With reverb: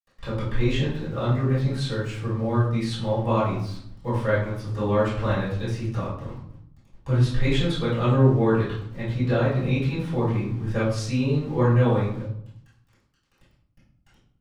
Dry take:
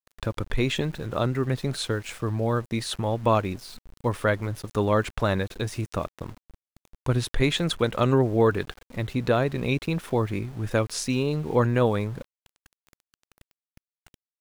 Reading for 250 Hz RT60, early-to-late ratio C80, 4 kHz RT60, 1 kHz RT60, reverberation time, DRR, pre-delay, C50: 0.95 s, 7.0 dB, 0.45 s, 0.65 s, 0.70 s, -13.0 dB, 3 ms, 3.0 dB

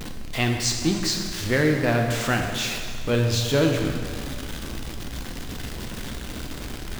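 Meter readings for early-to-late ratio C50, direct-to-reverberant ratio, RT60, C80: 4.5 dB, 2.5 dB, 1.9 s, 5.5 dB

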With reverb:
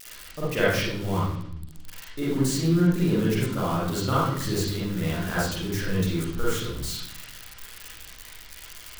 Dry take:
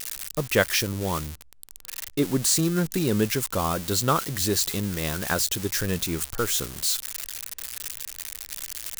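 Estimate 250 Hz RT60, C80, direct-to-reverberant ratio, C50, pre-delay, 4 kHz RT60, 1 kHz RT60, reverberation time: 1.3 s, 4.0 dB, -9.0 dB, -2.0 dB, 39 ms, 0.60 s, 0.65 s, 0.70 s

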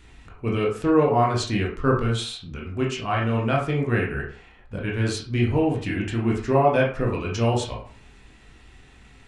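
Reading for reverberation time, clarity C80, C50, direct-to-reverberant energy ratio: 0.40 s, 10.5 dB, 6.5 dB, -3.0 dB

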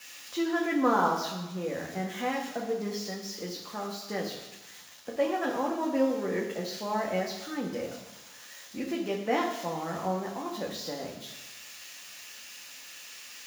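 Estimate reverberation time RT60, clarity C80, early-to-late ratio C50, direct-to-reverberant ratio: 1.1 s, 8.0 dB, 6.0 dB, -2.0 dB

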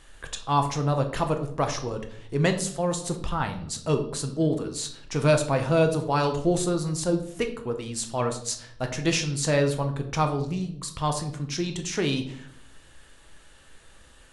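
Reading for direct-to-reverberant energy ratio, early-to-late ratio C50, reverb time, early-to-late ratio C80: 5.0 dB, 10.5 dB, 0.65 s, 13.5 dB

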